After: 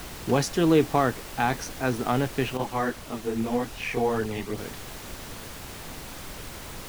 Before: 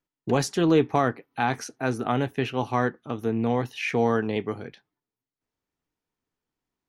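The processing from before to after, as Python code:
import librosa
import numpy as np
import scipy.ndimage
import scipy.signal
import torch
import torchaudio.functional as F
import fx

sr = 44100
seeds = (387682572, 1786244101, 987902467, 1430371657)

y = fx.dmg_noise_colour(x, sr, seeds[0], colour='pink', level_db=-39.0)
y = fx.chorus_voices(y, sr, voices=2, hz=1.2, base_ms=23, depth_ms=3.0, mix_pct=65, at=(2.57, 4.58))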